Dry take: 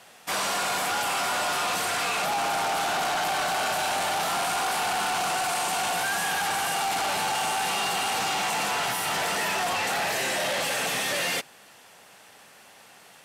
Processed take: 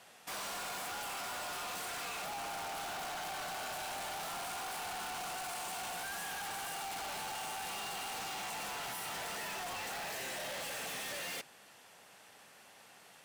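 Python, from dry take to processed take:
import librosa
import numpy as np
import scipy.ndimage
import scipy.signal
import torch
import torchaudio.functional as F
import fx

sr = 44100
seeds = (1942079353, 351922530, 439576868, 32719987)

y = np.clip(x, -10.0 ** (-33.5 / 20.0), 10.0 ** (-33.5 / 20.0))
y = F.gain(torch.from_numpy(y), -7.0).numpy()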